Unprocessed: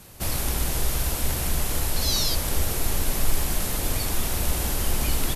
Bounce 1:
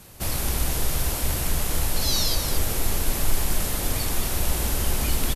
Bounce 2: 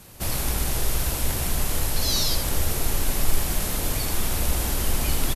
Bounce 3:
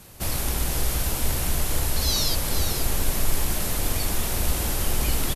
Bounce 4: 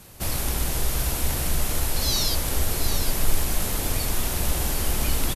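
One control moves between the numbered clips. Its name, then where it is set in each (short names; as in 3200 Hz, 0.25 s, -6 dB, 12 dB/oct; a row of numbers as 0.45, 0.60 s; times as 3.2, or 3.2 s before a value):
echo, time: 220, 82, 482, 760 ms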